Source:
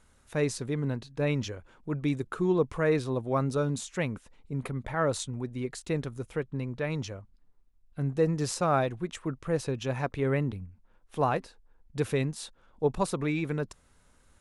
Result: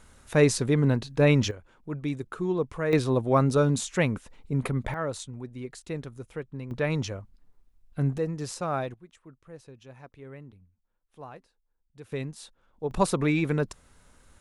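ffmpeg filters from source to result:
ffmpeg -i in.wav -af "asetnsamples=nb_out_samples=441:pad=0,asendcmd='1.51 volume volume -2dB;2.93 volume volume 6dB;4.94 volume volume -4dB;6.71 volume volume 4.5dB;8.18 volume volume -4dB;8.94 volume volume -17dB;12.12 volume volume -5dB;12.91 volume volume 5dB',volume=8dB" out.wav

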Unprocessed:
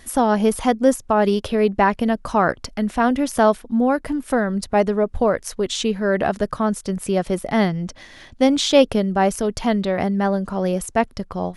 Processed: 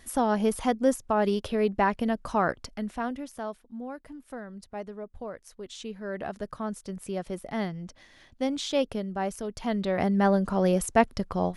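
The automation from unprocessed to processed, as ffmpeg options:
ffmpeg -i in.wav -af "volume=10.5dB,afade=type=out:start_time=2.45:duration=0.9:silence=0.237137,afade=type=in:start_time=5.49:duration=1.19:silence=0.421697,afade=type=in:start_time=9.57:duration=0.72:silence=0.298538" out.wav

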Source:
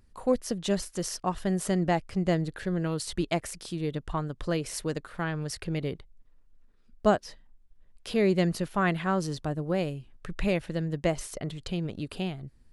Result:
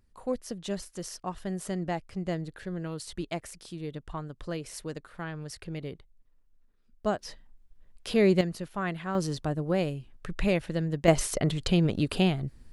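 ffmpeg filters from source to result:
ffmpeg -i in.wav -af "asetnsamples=nb_out_samples=441:pad=0,asendcmd='7.19 volume volume 2dB;8.41 volume volume -6dB;9.15 volume volume 1dB;11.08 volume volume 8dB',volume=-6dB" out.wav

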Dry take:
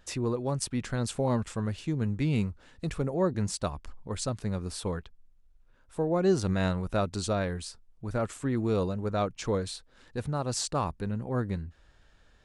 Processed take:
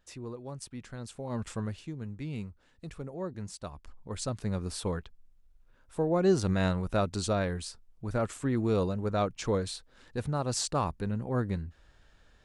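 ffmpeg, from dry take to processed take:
ffmpeg -i in.wav -af "volume=9dB,afade=type=in:start_time=1.29:duration=0.19:silence=0.316228,afade=type=out:start_time=1.48:duration=0.46:silence=0.354813,afade=type=in:start_time=3.63:duration=0.94:silence=0.316228" out.wav

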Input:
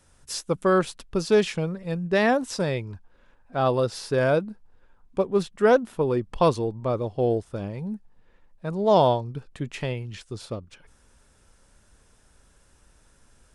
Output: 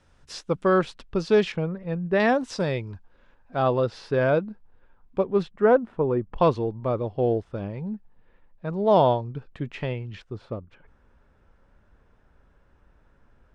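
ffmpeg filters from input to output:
ffmpeg -i in.wav -af "asetnsamples=nb_out_samples=441:pad=0,asendcmd='1.52 lowpass f 2200;2.2 lowpass f 5300;3.62 lowpass f 3200;5.51 lowpass f 1600;6.38 lowpass f 3100;10.22 lowpass f 1800',lowpass=4100" out.wav

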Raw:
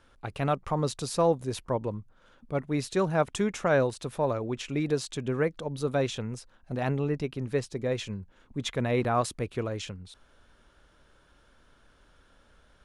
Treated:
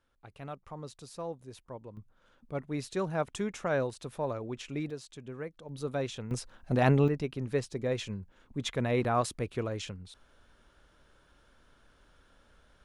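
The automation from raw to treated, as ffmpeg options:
ffmpeg -i in.wav -af "asetnsamples=nb_out_samples=441:pad=0,asendcmd='1.97 volume volume -6dB;4.9 volume volume -13dB;5.69 volume volume -6dB;6.31 volume volume 5dB;7.08 volume volume -2dB',volume=-15dB" out.wav

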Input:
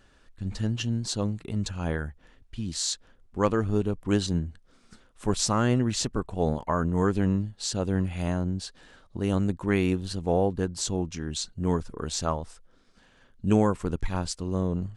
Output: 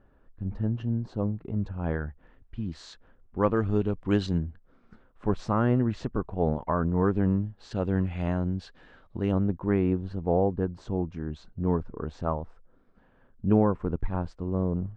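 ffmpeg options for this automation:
ffmpeg -i in.wav -af "asetnsamples=nb_out_samples=441:pad=0,asendcmd='1.84 lowpass f 1700;3.57 lowpass f 3100;4.38 lowpass f 1500;7.71 lowpass f 2500;9.32 lowpass f 1200',lowpass=1000" out.wav

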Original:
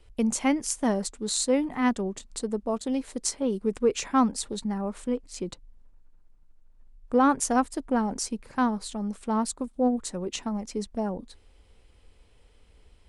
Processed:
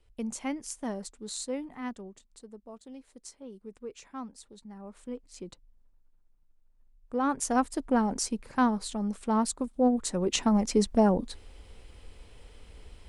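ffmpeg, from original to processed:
ffmpeg -i in.wav -af "volume=16dB,afade=type=out:start_time=1.35:duration=1.04:silence=0.375837,afade=type=in:start_time=4.64:duration=0.61:silence=0.354813,afade=type=in:start_time=7.16:duration=0.65:silence=0.354813,afade=type=in:start_time=9.94:duration=0.66:silence=0.421697" out.wav

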